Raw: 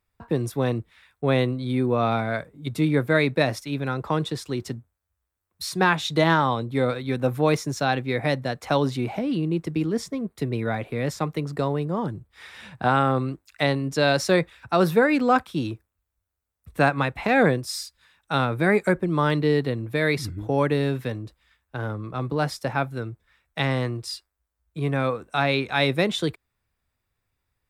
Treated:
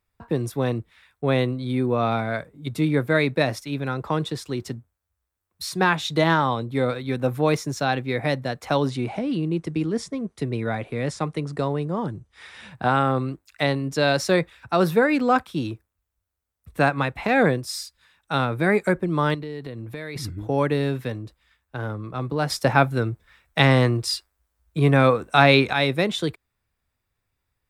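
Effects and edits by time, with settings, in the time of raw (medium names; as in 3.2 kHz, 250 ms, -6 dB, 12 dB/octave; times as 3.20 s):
8.89–12.70 s: careless resampling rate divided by 2×, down none, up filtered
19.34–20.16 s: compression, threshold -30 dBFS
22.50–25.73 s: gain +7.5 dB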